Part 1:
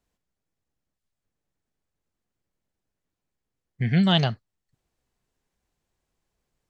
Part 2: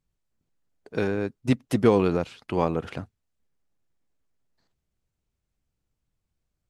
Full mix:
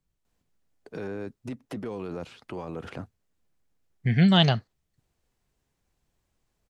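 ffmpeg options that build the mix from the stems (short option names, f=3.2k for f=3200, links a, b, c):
-filter_complex "[0:a]adelay=250,volume=1dB[a];[1:a]acrossover=split=180|1900|4400[b][c][d][e];[b]acompressor=threshold=-38dB:ratio=4[f];[c]acompressor=threshold=-26dB:ratio=4[g];[d]acompressor=threshold=-51dB:ratio=4[h];[e]acompressor=threshold=-58dB:ratio=4[i];[f][g][h][i]amix=inputs=4:normalize=0,alimiter=level_in=2.5dB:limit=-24dB:level=0:latency=1:release=17,volume=-2.5dB,volume=0dB[j];[a][j]amix=inputs=2:normalize=0"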